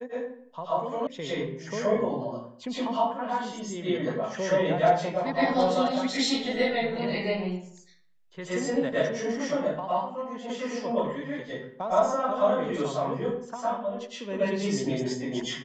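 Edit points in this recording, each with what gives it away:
1.07 s: sound stops dead

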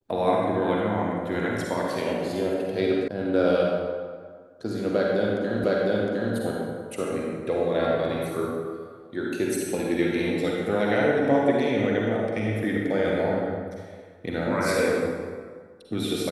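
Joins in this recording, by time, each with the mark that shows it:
3.08 s: sound stops dead
5.64 s: repeat of the last 0.71 s

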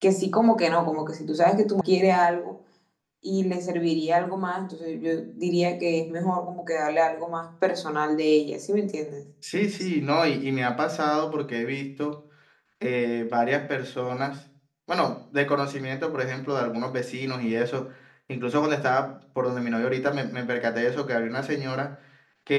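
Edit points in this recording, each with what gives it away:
1.81 s: sound stops dead

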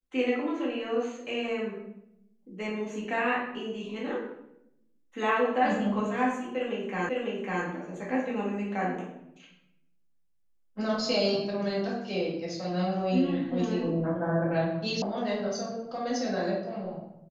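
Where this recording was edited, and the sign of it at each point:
7.09 s: repeat of the last 0.55 s
15.02 s: sound stops dead

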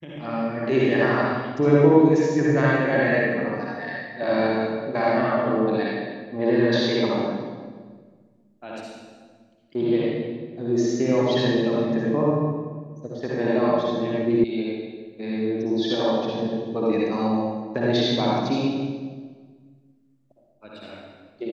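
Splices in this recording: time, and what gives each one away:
14.44 s: sound stops dead

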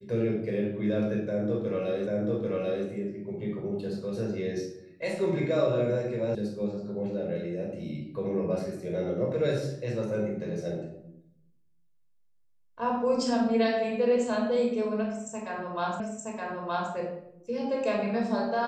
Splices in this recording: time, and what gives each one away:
2.07 s: repeat of the last 0.79 s
6.35 s: sound stops dead
16.00 s: repeat of the last 0.92 s

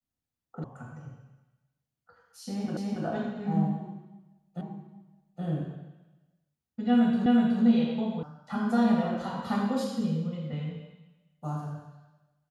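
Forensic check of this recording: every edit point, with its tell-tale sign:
0.64 s: sound stops dead
2.77 s: repeat of the last 0.28 s
4.61 s: repeat of the last 0.82 s
7.26 s: repeat of the last 0.37 s
8.23 s: sound stops dead

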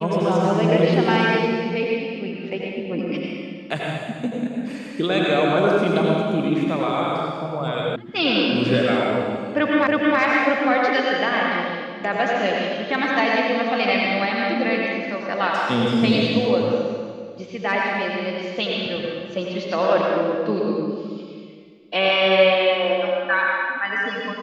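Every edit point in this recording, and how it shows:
7.96 s: sound stops dead
9.87 s: repeat of the last 0.32 s

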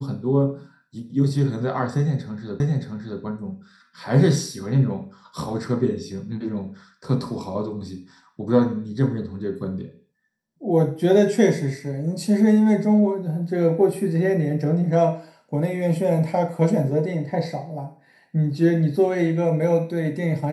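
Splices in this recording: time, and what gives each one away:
2.60 s: repeat of the last 0.62 s

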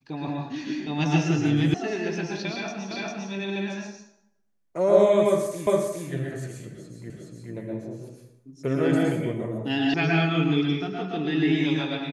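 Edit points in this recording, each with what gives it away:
1.74 s: sound stops dead
2.91 s: repeat of the last 0.4 s
5.67 s: repeat of the last 0.41 s
7.10 s: repeat of the last 0.42 s
9.94 s: sound stops dead

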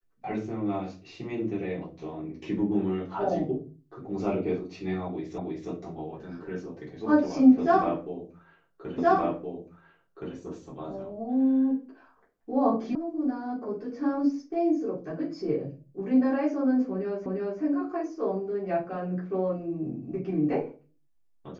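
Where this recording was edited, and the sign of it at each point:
5.38 s: repeat of the last 0.32 s
8.98 s: repeat of the last 1.37 s
12.95 s: sound stops dead
17.26 s: repeat of the last 0.35 s

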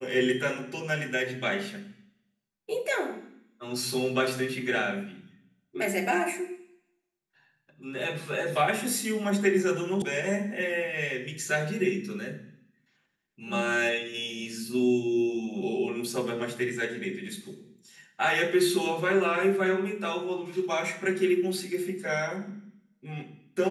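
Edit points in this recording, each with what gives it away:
10.02 s: sound stops dead

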